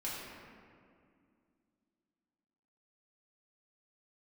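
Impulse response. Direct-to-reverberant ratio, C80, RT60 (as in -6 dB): -7.5 dB, 0.5 dB, 2.3 s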